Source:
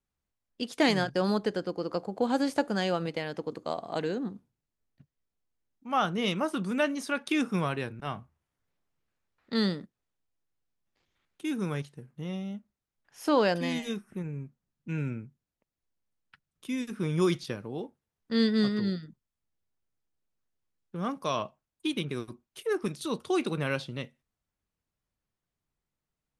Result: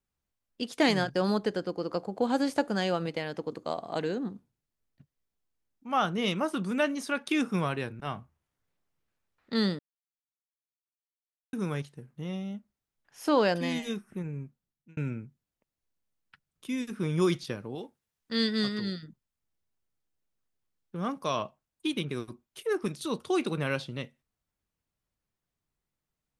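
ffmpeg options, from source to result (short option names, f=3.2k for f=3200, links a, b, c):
-filter_complex "[0:a]asettb=1/sr,asplit=3[a][b][c];[a]atrim=end=17.754[d];[b]atrim=start=17.75:end=19.03,asetpts=PTS-STARTPTS,afade=t=in:d=0.004:c=qsin,afade=t=out:st=1.276:d=0.004:c=qsin,tiltshelf=f=1.3k:g=-4.5[e];[c]atrim=start=19.026[f];[d][e]acrossfade=d=0.004:c1=hsin:c2=qsin[g];[g][f]acrossfade=d=0.004:c1=qsin:c2=hsin,asplit=4[h][i][j][k];[h]atrim=end=9.79,asetpts=PTS-STARTPTS,afade=t=out:st=9.786:d=0.004:c=hsin[l];[i]atrim=start=9.79:end=11.53,asetpts=PTS-STARTPTS,volume=0[m];[j]atrim=start=11.53:end=14.97,asetpts=PTS-STARTPTS,afade=t=in:d=0.004:c=hsin,afade=t=out:st=2.89:d=0.55[n];[k]atrim=start=14.97,asetpts=PTS-STARTPTS,afade=t=in:d=0.004:c=hsin[o];[l][m][n][o]concat=n=4:v=0:a=1"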